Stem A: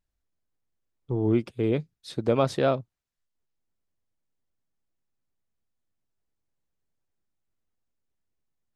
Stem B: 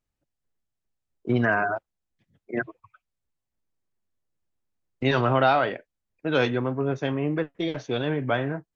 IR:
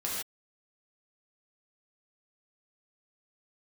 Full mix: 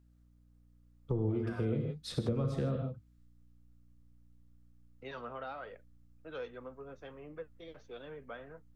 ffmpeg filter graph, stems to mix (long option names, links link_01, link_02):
-filter_complex "[0:a]asubboost=boost=10.5:cutoff=130,acrossover=split=350[link_01][link_02];[link_02]acompressor=threshold=-36dB:ratio=6[link_03];[link_01][link_03]amix=inputs=2:normalize=0,volume=-2dB,asplit=2[link_04][link_05];[link_05]volume=-5dB[link_06];[1:a]equalizer=frequency=320:width=1.5:gain=-5,flanger=delay=1.9:depth=3.1:regen=60:speed=1.4:shape=triangular,volume=-17.5dB,asplit=2[link_07][link_08];[link_08]apad=whole_len=386003[link_09];[link_04][link_09]sidechaincompress=threshold=-49dB:ratio=8:attack=16:release=134[link_10];[2:a]atrim=start_sample=2205[link_11];[link_06][link_11]afir=irnorm=-1:irlink=0[link_12];[link_10][link_07][link_12]amix=inputs=3:normalize=0,equalizer=frequency=125:width_type=o:width=0.33:gain=-7,equalizer=frequency=500:width_type=o:width=0.33:gain=9,equalizer=frequency=1250:width_type=o:width=0.33:gain=7,acrossover=split=140|330[link_13][link_14][link_15];[link_13]acompressor=threshold=-40dB:ratio=4[link_16];[link_14]acompressor=threshold=-36dB:ratio=4[link_17];[link_15]acompressor=threshold=-40dB:ratio=4[link_18];[link_16][link_17][link_18]amix=inputs=3:normalize=0,aeval=exprs='val(0)+0.000708*(sin(2*PI*60*n/s)+sin(2*PI*2*60*n/s)/2+sin(2*PI*3*60*n/s)/3+sin(2*PI*4*60*n/s)/4+sin(2*PI*5*60*n/s)/5)':channel_layout=same"